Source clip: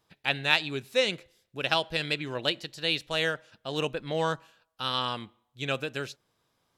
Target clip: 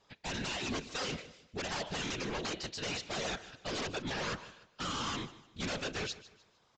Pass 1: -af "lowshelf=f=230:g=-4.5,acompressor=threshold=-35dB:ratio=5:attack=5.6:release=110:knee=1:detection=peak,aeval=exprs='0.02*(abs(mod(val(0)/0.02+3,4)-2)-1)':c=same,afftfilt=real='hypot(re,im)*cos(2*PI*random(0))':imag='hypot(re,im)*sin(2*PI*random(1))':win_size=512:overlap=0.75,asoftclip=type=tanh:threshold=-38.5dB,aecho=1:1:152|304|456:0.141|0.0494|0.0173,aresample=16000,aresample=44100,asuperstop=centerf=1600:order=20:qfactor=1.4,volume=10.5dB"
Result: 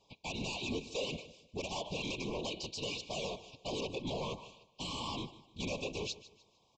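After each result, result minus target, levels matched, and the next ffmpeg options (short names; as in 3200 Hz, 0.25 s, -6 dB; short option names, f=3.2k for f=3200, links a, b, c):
compressor: peak gain reduction +6 dB; 2000 Hz band -3.5 dB
-af "lowshelf=f=230:g=-4.5,acompressor=threshold=-27.5dB:ratio=5:attack=5.6:release=110:knee=1:detection=peak,aeval=exprs='0.02*(abs(mod(val(0)/0.02+3,4)-2)-1)':c=same,afftfilt=real='hypot(re,im)*cos(2*PI*random(0))':imag='hypot(re,im)*sin(2*PI*random(1))':win_size=512:overlap=0.75,asoftclip=type=tanh:threshold=-38.5dB,aecho=1:1:152|304|456:0.141|0.0494|0.0173,aresample=16000,aresample=44100,asuperstop=centerf=1600:order=20:qfactor=1.4,volume=10.5dB"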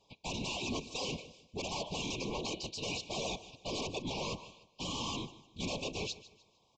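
2000 Hz band -4.0 dB
-af "lowshelf=f=230:g=-4.5,acompressor=threshold=-27.5dB:ratio=5:attack=5.6:release=110:knee=1:detection=peak,aeval=exprs='0.02*(abs(mod(val(0)/0.02+3,4)-2)-1)':c=same,afftfilt=real='hypot(re,im)*cos(2*PI*random(0))':imag='hypot(re,im)*sin(2*PI*random(1))':win_size=512:overlap=0.75,asoftclip=type=tanh:threshold=-38.5dB,aecho=1:1:152|304|456:0.141|0.0494|0.0173,aresample=16000,aresample=44100,volume=10.5dB"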